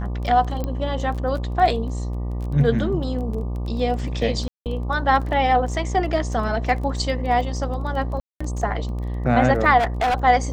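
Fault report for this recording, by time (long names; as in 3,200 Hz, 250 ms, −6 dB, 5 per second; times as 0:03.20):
mains buzz 60 Hz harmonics 20 −26 dBFS
surface crackle 17 per second −30 dBFS
0:00.64: click −14 dBFS
0:04.48–0:04.66: drop-out 178 ms
0:08.20–0:08.40: drop-out 205 ms
0:09.78–0:10.24: clipping −17 dBFS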